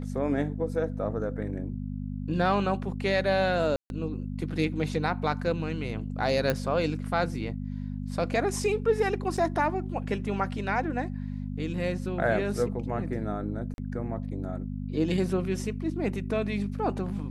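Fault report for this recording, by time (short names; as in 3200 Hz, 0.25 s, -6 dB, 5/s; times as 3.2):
hum 50 Hz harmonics 5 -34 dBFS
3.76–3.9 gap 0.141 s
6.5 pop -12 dBFS
9.37–9.38 gap 5.5 ms
13.74–13.78 gap 41 ms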